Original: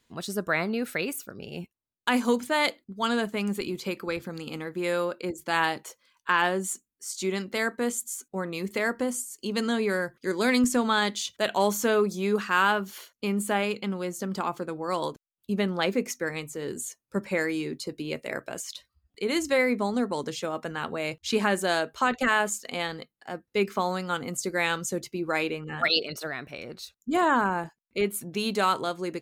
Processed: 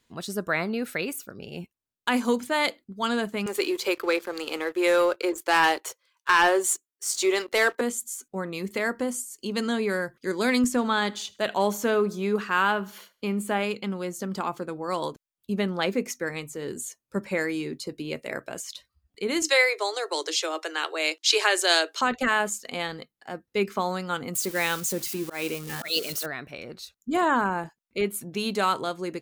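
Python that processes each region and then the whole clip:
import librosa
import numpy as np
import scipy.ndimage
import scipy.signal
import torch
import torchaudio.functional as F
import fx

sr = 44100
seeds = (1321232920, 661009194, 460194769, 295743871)

y = fx.chain(x, sr, fx.steep_highpass(hz=330.0, slope=36),
    fx.leveller(passes=2), at=(3.46, 7.81))
y = fx.chain(y, sr, fx.peak_eq(hz=8700.0, db=-4.5, octaves=2.2),
    fx.echo_feedback(ms=77, feedback_pct=41, wet_db=-23), at=(10.7, 13.61))
y = fx.chain(y, sr, fx.cheby1_highpass(hz=300.0, order=10),
    fx.peak_eq(hz=5000.0, db=13.5, octaves=2.4), at=(19.42, 22.01))
y = fx.chain(y, sr, fx.crossing_spikes(level_db=-26.0),
    fx.auto_swell(attack_ms=166.0), at=(24.35, 26.26))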